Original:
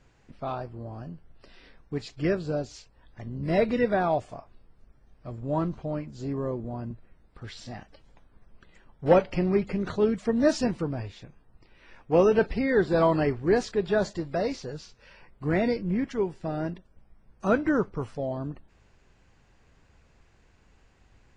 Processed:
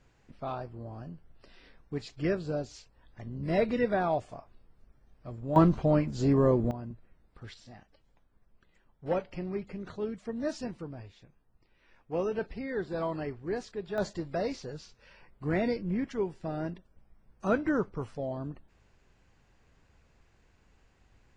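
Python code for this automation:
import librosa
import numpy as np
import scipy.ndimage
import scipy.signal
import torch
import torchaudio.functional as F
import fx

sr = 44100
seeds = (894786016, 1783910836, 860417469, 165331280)

y = fx.gain(x, sr, db=fx.steps((0.0, -3.5), (5.56, 7.0), (6.71, -5.0), (7.54, -11.0), (13.98, -4.0)))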